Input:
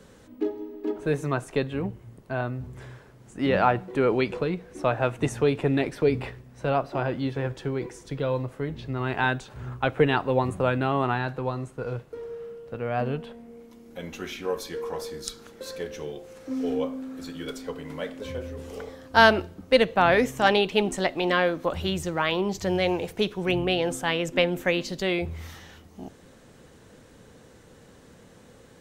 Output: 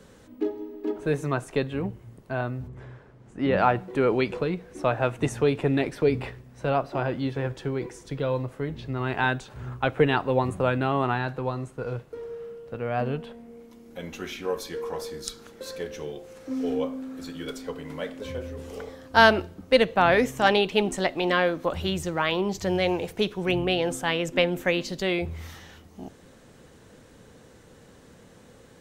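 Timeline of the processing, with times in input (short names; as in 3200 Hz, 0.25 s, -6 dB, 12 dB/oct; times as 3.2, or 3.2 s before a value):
2.67–3.57 LPF 1400 Hz -> 2600 Hz 6 dB/oct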